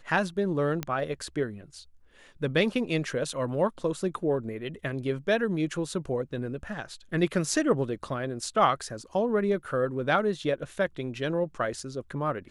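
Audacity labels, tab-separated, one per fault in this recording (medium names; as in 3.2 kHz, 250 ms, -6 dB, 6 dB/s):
0.830000	0.830000	pop -15 dBFS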